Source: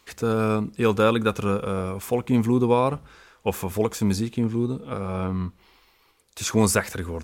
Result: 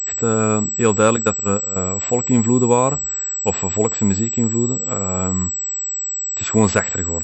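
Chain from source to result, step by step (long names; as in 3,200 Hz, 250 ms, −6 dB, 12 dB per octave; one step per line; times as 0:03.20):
0:01.16–0:01.76: noise gate −23 dBFS, range −15 dB
switching amplifier with a slow clock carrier 7,800 Hz
level +4.5 dB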